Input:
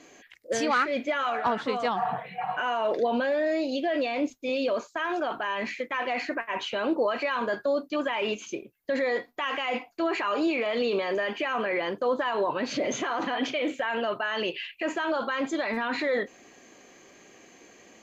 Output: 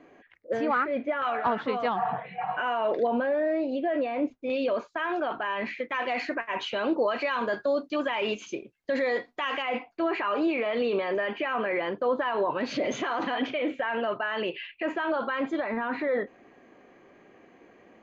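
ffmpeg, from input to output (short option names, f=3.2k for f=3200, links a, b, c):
-af "asetnsamples=n=441:p=0,asendcmd='1.22 lowpass f 2900;3.07 lowpass f 1700;4.5 lowpass f 3100;5.89 lowpass f 5900;9.62 lowpass f 2800;12.61 lowpass f 4700;13.42 lowpass f 2600;15.6 lowpass f 1700',lowpass=1.6k"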